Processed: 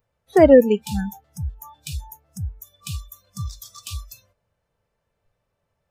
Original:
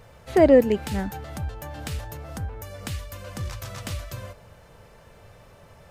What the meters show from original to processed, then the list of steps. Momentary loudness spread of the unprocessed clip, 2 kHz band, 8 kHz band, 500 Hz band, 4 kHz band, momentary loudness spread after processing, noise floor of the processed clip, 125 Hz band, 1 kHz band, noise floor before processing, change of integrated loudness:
21 LU, +1.0 dB, +3.0 dB, +4.0 dB, +1.5 dB, 22 LU, −77 dBFS, +1.0 dB, +2.5 dB, −52 dBFS, +9.0 dB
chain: noise reduction from a noise print of the clip's start 29 dB
level +4 dB

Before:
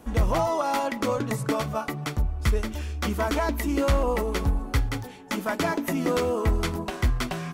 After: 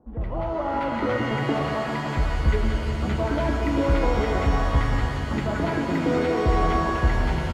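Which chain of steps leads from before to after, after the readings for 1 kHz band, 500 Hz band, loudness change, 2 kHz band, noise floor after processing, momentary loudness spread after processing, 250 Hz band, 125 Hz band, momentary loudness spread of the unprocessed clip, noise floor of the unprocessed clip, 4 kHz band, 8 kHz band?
+2.5 dB, +1.5 dB, +2.5 dB, +2.5 dB, −29 dBFS, 5 LU, +3.0 dB, +3.5 dB, 6 LU, −38 dBFS, −0.5 dB, −8.0 dB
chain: automatic gain control gain up to 9.5 dB
high-frequency loss of the air 480 metres
multiband delay without the direct sound lows, highs 70 ms, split 1,200 Hz
reverb with rising layers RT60 3.2 s, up +7 semitones, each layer −2 dB, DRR 3 dB
level −8 dB

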